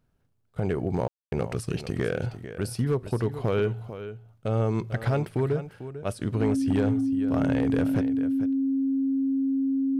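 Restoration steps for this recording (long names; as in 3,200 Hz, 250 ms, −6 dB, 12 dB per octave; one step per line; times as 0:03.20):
clipped peaks rebuilt −17.5 dBFS
notch filter 270 Hz, Q 30
ambience match 0:01.08–0:01.32
echo removal 446 ms −12.5 dB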